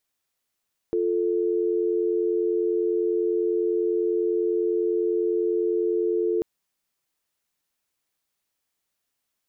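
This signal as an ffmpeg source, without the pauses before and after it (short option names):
-f lavfi -i "aevalsrc='0.0668*(sin(2*PI*350*t)+sin(2*PI*440*t))':d=5.49:s=44100"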